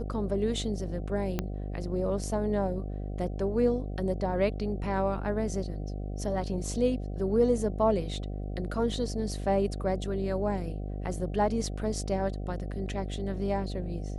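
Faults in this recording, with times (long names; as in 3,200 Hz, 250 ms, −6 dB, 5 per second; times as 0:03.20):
mains buzz 50 Hz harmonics 15 −35 dBFS
0:01.39: click −15 dBFS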